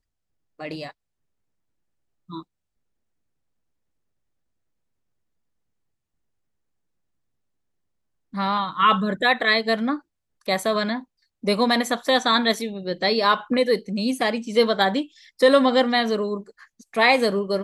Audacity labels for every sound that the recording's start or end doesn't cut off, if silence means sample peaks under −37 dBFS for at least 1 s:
2.300000	2.420000	sound